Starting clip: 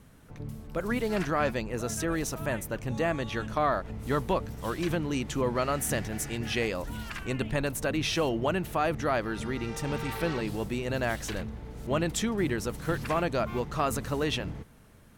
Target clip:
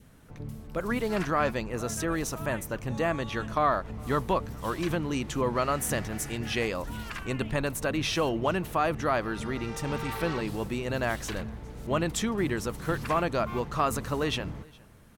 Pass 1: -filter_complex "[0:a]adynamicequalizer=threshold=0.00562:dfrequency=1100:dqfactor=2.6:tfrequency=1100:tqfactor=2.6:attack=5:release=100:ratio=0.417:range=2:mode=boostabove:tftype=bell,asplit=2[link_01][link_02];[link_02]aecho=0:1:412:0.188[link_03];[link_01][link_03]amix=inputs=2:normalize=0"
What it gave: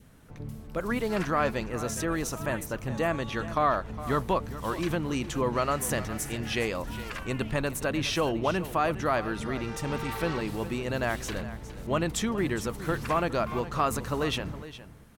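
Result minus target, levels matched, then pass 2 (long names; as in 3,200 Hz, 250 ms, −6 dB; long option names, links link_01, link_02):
echo-to-direct +11 dB
-filter_complex "[0:a]adynamicequalizer=threshold=0.00562:dfrequency=1100:dqfactor=2.6:tfrequency=1100:tqfactor=2.6:attack=5:release=100:ratio=0.417:range=2:mode=boostabove:tftype=bell,asplit=2[link_01][link_02];[link_02]aecho=0:1:412:0.0531[link_03];[link_01][link_03]amix=inputs=2:normalize=0"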